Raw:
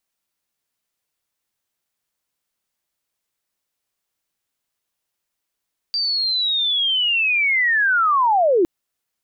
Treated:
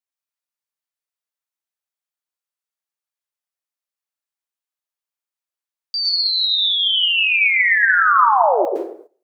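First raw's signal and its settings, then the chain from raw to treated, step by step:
chirp linear 4700 Hz -> 320 Hz -18.5 dBFS -> -12.5 dBFS 2.71 s
HPF 510 Hz 12 dB/oct; plate-style reverb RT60 0.7 s, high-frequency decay 0.6×, pre-delay 0.1 s, DRR 0 dB; gate -42 dBFS, range -14 dB

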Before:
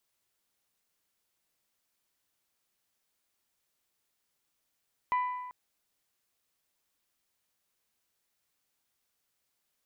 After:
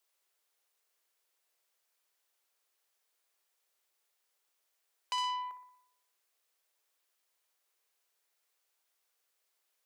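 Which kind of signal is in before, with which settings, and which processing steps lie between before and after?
metal hit bell, length 0.39 s, lowest mode 996 Hz, decay 1.31 s, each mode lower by 11 dB, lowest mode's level -24 dB
steep high-pass 370 Hz; analogue delay 60 ms, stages 1024, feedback 56%, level -11 dB; core saturation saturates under 3500 Hz

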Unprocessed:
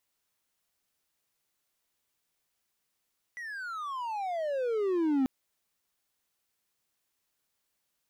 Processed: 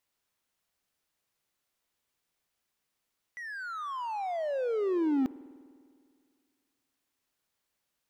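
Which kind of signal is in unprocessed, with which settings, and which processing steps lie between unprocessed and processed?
gliding synth tone triangle, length 1.89 s, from 1980 Hz, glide -35.5 st, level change +14.5 dB, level -21 dB
high shelf 5100 Hz -4.5 dB; spring tank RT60 2.1 s, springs 50 ms, chirp 75 ms, DRR 18.5 dB

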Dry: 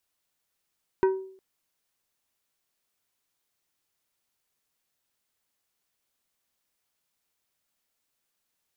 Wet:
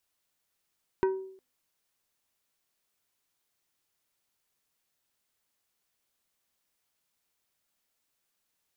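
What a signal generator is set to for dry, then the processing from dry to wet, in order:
glass hit plate, length 0.36 s, lowest mode 381 Hz, decay 0.56 s, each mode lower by 8 dB, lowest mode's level -16 dB
de-hum 255.1 Hz, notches 3; compressor 1.5:1, threshold -31 dBFS

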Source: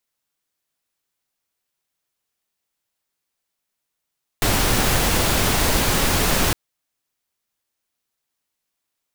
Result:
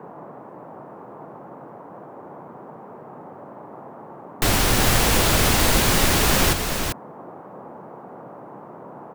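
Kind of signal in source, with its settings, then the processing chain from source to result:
noise pink, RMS -18.5 dBFS 2.11 s
echo 0.393 s -6 dB; band noise 130–1000 Hz -40 dBFS

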